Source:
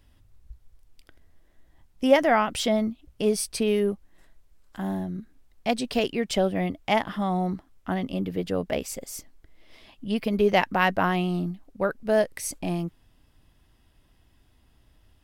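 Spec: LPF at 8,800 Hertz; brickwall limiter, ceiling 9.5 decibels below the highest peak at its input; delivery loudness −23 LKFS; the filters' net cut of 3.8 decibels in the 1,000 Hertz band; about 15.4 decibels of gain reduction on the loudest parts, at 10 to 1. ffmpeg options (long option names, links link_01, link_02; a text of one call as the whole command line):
ffmpeg -i in.wav -af "lowpass=8800,equalizer=frequency=1000:width_type=o:gain=-5.5,acompressor=threshold=-29dB:ratio=10,volume=14.5dB,alimiter=limit=-12.5dB:level=0:latency=1" out.wav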